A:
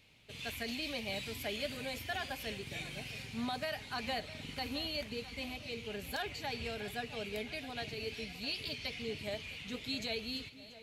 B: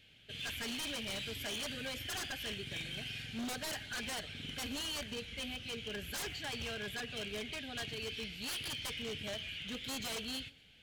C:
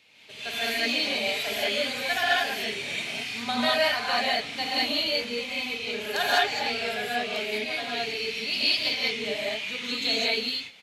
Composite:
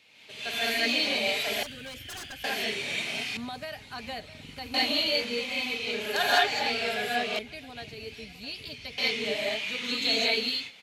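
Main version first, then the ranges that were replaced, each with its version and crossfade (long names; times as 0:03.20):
C
0:01.63–0:02.44: punch in from B
0:03.37–0:04.74: punch in from A
0:07.39–0:08.98: punch in from A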